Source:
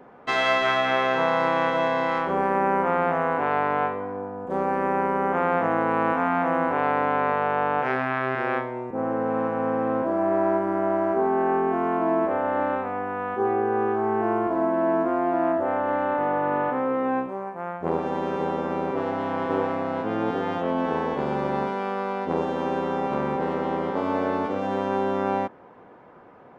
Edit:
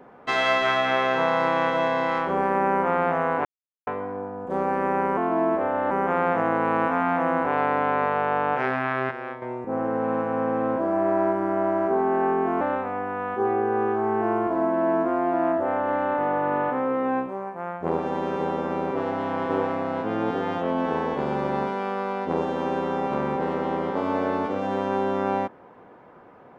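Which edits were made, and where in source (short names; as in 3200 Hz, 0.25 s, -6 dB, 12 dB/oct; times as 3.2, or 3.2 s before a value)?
3.45–3.87 mute
8.37–8.68 gain -8.5 dB
11.87–12.61 move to 5.17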